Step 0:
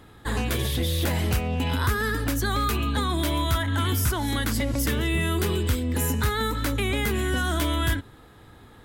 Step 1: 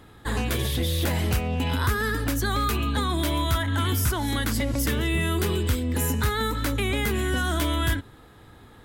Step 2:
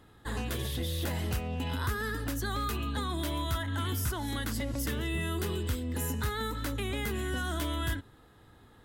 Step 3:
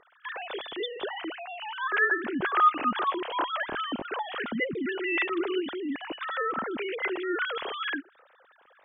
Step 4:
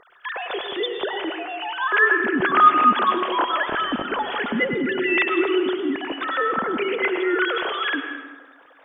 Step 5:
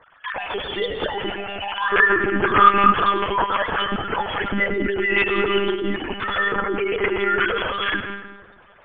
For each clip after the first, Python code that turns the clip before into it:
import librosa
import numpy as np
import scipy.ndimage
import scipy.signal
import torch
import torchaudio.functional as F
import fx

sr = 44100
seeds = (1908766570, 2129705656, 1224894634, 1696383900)

y1 = x
y2 = fx.notch(y1, sr, hz=2300.0, q=14.0)
y2 = y2 * 10.0 ** (-8.0 / 20.0)
y3 = fx.sine_speech(y2, sr)
y3 = y3 * 10.0 ** (2.5 / 20.0)
y4 = fx.rev_plate(y3, sr, seeds[0], rt60_s=1.3, hf_ratio=0.65, predelay_ms=85, drr_db=6.5)
y4 = y4 * 10.0 ** (7.0 / 20.0)
y5 = fx.lpc_monotone(y4, sr, seeds[1], pitch_hz=200.0, order=16)
y5 = y5 * 10.0 ** (1.0 / 20.0)